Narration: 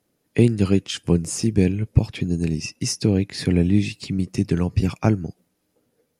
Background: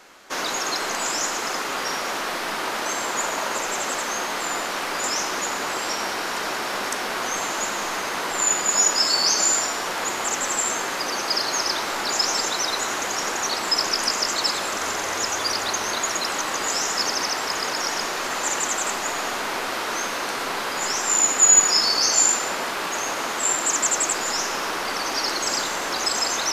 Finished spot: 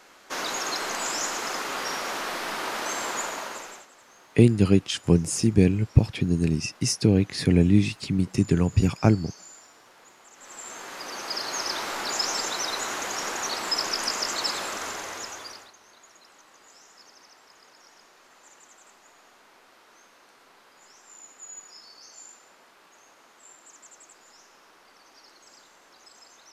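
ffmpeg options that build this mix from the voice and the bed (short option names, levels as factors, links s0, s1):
-filter_complex "[0:a]adelay=4000,volume=0.944[s0];[1:a]volume=8.41,afade=t=out:st=3.09:d=0.78:silence=0.0668344,afade=t=in:st=10.34:d=1.48:silence=0.0749894,afade=t=out:st=14.6:d=1.12:silence=0.0630957[s1];[s0][s1]amix=inputs=2:normalize=0"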